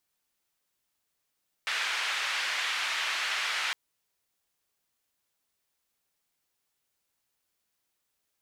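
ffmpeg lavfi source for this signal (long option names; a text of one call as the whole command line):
ffmpeg -f lavfi -i "anoisesrc=color=white:duration=2.06:sample_rate=44100:seed=1,highpass=frequency=1500,lowpass=frequency=2500,volume=-13.7dB" out.wav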